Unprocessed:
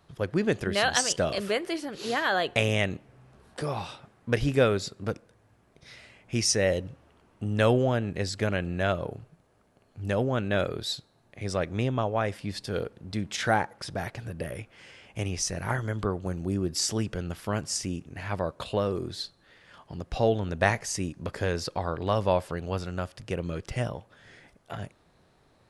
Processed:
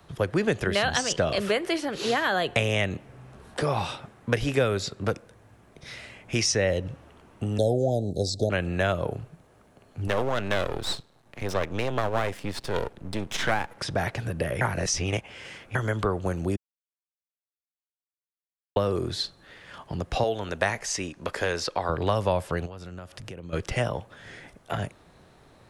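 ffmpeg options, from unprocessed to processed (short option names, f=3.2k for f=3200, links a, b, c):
-filter_complex "[0:a]asettb=1/sr,asplit=3[a][b][c];[a]atrim=end=7.584[d];[b]atrim=start=7.58:end=8.5,asetpts=PTS-STARTPTS,afade=t=in:d=0.004:c=qsin,afade=t=out:st=0.916:d=0.004:c=qsin,asuperstop=centerf=1700:order=20:qfactor=0.59[e];[c]atrim=start=8.496[f];[d][e]acrossfade=d=0.004:c1=hsin:c2=qsin[g];[g][f]acrossfade=d=0.004:c1=qsin:c2=hsin,asettb=1/sr,asplit=3[h][i][j];[h]atrim=end=10.074[k];[i]atrim=start=10.07:end=13.77,asetpts=PTS-STARTPTS,afade=t=in:d=0.004:c=qsin,afade=t=out:st=3.696:d=0.004:c=qsin,aeval=exprs='max(val(0),0)':c=same[l];[j]atrim=start=13.766[m];[k][l]acrossfade=d=0.004:c1=hsin:c2=qsin[n];[n][m]acrossfade=d=0.004:c1=qsin:c2=hsin,asettb=1/sr,asplit=3[o][p][q];[o]atrim=end=20.234[r];[p]atrim=start=20.23:end=21.89,asetpts=PTS-STARTPTS,afade=t=in:d=0.004:c=qsin,afade=t=out:st=1.656:d=0.004:c=qsin,equalizer=f=110:t=o:w=2.8:g=-14[s];[q]atrim=start=21.886[t];[r][s]acrossfade=d=0.004:c1=hsin:c2=qsin[u];[u][t]acrossfade=d=0.004:c1=qsin:c2=hsin,asplit=3[v][w][x];[v]afade=t=out:st=22.65:d=0.02[y];[w]acompressor=threshold=-44dB:ratio=10:attack=3.2:release=140:knee=1:detection=peak,afade=t=in:st=22.65:d=0.02,afade=t=out:st=23.52:d=0.02[z];[x]afade=t=in:st=23.52:d=0.02[aa];[y][z][aa]amix=inputs=3:normalize=0,asplit=5[ab][ac][ad][ae][af];[ab]atrim=end=14.612[ag];[ac]atrim=start=14.608:end=15.752,asetpts=PTS-STARTPTS,areverse[ah];[ad]atrim=start=15.748:end=16.56,asetpts=PTS-STARTPTS,afade=t=out:st=0.808:d=0.004:c=hsin[ai];[ae]atrim=start=16.56:end=18.76,asetpts=PTS-STARTPTS,volume=0[aj];[af]atrim=start=18.76,asetpts=PTS-STARTPTS,afade=t=in:d=0.004:c=hsin[ak];[ag][ah]acrossfade=d=0.004:c1=hsin:c2=hsin[al];[ai][aj][ak]concat=n=3:v=0:a=1[am];[al][am]acrossfade=d=0.004:c1=hsin:c2=hsin,equalizer=f=4.7k:t=o:w=0.31:g=-3,acrossover=split=170|350|6800[an][ao][ap][aq];[an]acompressor=threshold=-38dB:ratio=4[ar];[ao]acompressor=threshold=-47dB:ratio=4[as];[ap]acompressor=threshold=-31dB:ratio=4[at];[aq]acompressor=threshold=-57dB:ratio=4[au];[ar][as][at][au]amix=inputs=4:normalize=0,volume=8dB"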